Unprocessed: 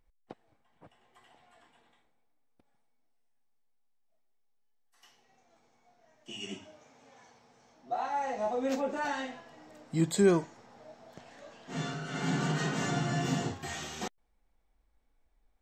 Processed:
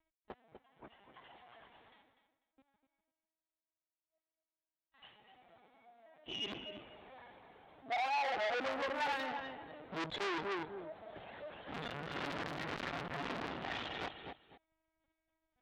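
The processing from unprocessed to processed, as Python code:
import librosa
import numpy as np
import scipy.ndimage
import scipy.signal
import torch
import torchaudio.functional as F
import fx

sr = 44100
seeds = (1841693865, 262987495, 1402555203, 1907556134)

y = fx.lpc_vocoder(x, sr, seeds[0], excitation='pitch_kept', order=16)
y = fx.echo_feedback(y, sr, ms=247, feedback_pct=18, wet_db=-10.5)
y = np.clip(y, -10.0 ** (-30.0 / 20.0), 10.0 ** (-30.0 / 20.0))
y = fx.highpass(y, sr, hz=180.0, slope=6)
y = fx.transformer_sat(y, sr, knee_hz=2600.0)
y = y * 10.0 ** (3.5 / 20.0)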